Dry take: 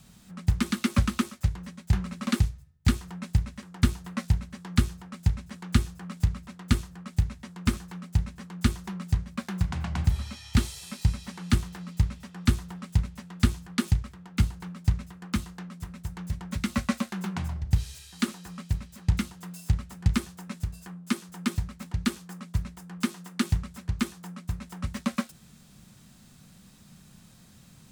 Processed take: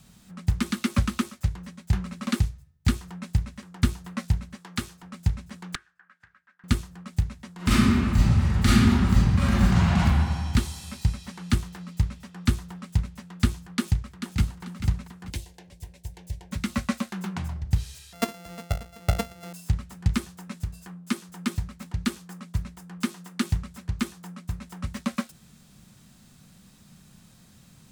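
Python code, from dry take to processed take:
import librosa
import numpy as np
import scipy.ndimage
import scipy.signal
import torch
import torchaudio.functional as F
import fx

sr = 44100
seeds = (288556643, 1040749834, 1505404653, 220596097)

y = fx.highpass(x, sr, hz=410.0, slope=6, at=(4.56, 5.03))
y = fx.bandpass_q(y, sr, hz=1600.0, q=7.3, at=(5.75, 6.64))
y = fx.reverb_throw(y, sr, start_s=7.56, length_s=2.48, rt60_s=1.8, drr_db=-11.0)
y = fx.echo_throw(y, sr, start_s=13.75, length_s=0.88, ms=440, feedback_pct=30, wet_db=-8.0)
y = fx.fixed_phaser(y, sr, hz=520.0, stages=4, at=(15.3, 16.52))
y = fx.sample_sort(y, sr, block=64, at=(18.13, 19.53))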